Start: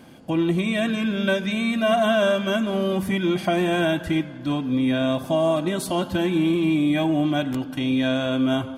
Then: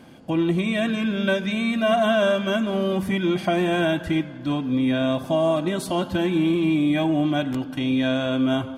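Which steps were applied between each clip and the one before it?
high-shelf EQ 8,400 Hz −6 dB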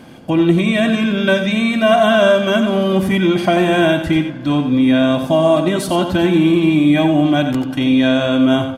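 single-tap delay 89 ms −9 dB
level +7.5 dB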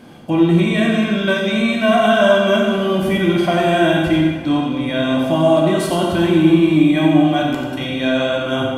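dense smooth reverb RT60 1.5 s, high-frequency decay 0.75×, DRR −0.5 dB
level −4 dB

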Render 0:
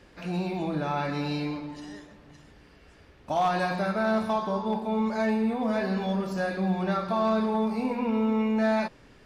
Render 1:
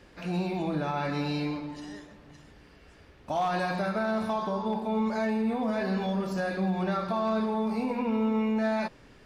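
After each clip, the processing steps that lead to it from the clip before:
brickwall limiter −21 dBFS, peak gain reduction 4.5 dB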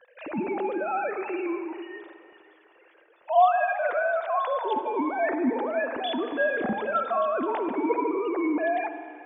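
three sine waves on the formant tracks
convolution reverb RT60 2.6 s, pre-delay 44 ms, DRR 9 dB
level +2 dB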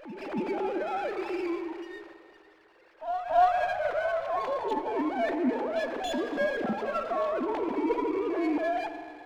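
backwards echo 281 ms −10.5 dB
dynamic equaliser 1,300 Hz, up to −5 dB, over −37 dBFS, Q 1.5
windowed peak hold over 5 samples
level −2 dB

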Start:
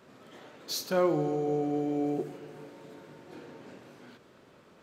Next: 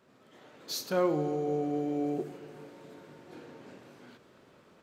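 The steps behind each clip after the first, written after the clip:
automatic gain control gain up to 6.5 dB
level −8 dB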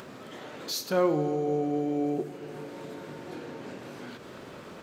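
upward compression, threshold −35 dBFS
level +3 dB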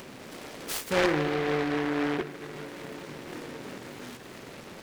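short delay modulated by noise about 1,300 Hz, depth 0.19 ms

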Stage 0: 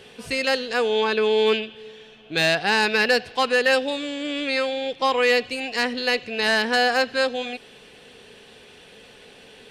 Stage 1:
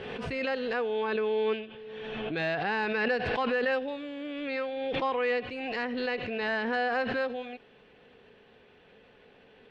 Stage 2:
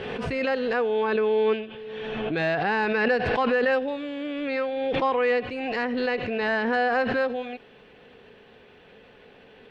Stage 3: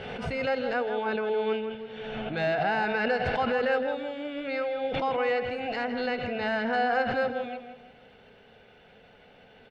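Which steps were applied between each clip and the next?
low-pass filter 2,100 Hz 12 dB per octave; background raised ahead of every attack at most 24 dB per second; level −8.5 dB
dynamic equaliser 3,400 Hz, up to −4 dB, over −46 dBFS, Q 0.89; level +6 dB
comb filter 1.4 ms, depth 46%; tape delay 163 ms, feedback 41%, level −6 dB, low-pass 2,000 Hz; level −4 dB

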